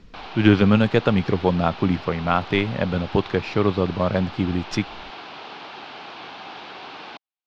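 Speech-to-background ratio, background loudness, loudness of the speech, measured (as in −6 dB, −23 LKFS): 15.5 dB, −37.0 LKFS, −21.5 LKFS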